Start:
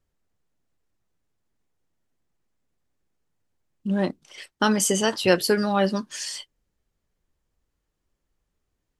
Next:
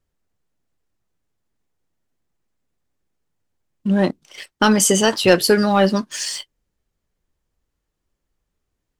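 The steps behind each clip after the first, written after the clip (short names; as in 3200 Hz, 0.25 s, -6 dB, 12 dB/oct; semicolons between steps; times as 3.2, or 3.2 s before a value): sample leveller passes 1; gain +3 dB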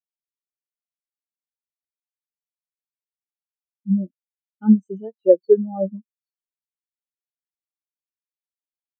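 high shelf 7600 Hz -6 dB; spectral expander 4:1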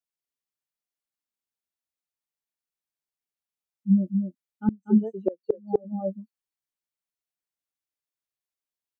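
echo 0.24 s -6 dB; flipped gate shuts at -10 dBFS, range -29 dB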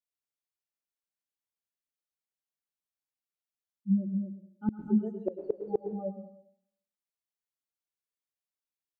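plate-style reverb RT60 0.67 s, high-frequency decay 1×, pre-delay 95 ms, DRR 9 dB; gain -6.5 dB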